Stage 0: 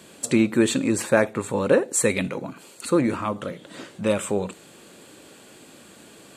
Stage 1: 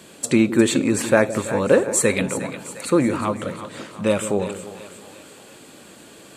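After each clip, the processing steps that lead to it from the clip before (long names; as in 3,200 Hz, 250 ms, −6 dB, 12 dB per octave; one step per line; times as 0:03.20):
echo with a time of its own for lows and highs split 620 Hz, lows 163 ms, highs 355 ms, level −11.5 dB
level +2.5 dB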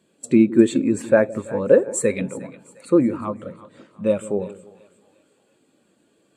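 every bin expanded away from the loudest bin 1.5 to 1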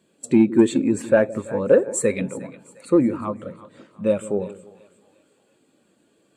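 soft clipping −3.5 dBFS, distortion −22 dB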